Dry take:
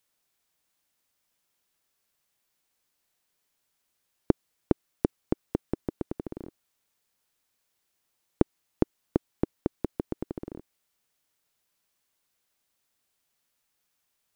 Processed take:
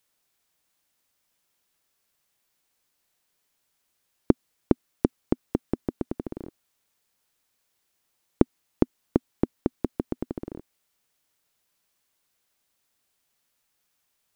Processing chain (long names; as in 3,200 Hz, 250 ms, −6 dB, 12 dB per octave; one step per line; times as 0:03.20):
dynamic equaliser 250 Hz, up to +4 dB, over −40 dBFS, Q 3.7
level +2.5 dB